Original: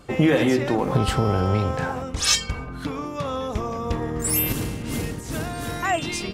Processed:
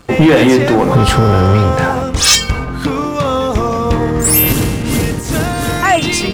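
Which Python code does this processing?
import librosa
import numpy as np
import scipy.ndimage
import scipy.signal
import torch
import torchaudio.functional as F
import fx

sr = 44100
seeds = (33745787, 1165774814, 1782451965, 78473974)

y = fx.leveller(x, sr, passes=2)
y = y * librosa.db_to_amplitude(5.5)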